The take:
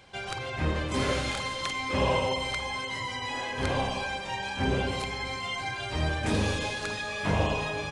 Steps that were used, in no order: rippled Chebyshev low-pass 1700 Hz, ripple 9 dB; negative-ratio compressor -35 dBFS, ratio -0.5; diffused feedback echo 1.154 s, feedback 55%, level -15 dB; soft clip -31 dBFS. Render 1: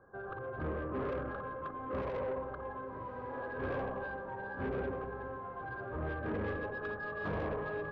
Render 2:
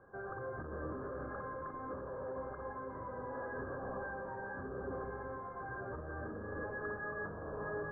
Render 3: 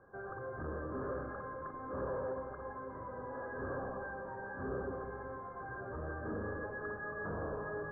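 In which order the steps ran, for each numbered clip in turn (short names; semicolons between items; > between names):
rippled Chebyshev low-pass > soft clip > diffused feedback echo > negative-ratio compressor; diffused feedback echo > soft clip > negative-ratio compressor > rippled Chebyshev low-pass; diffused feedback echo > soft clip > rippled Chebyshev low-pass > negative-ratio compressor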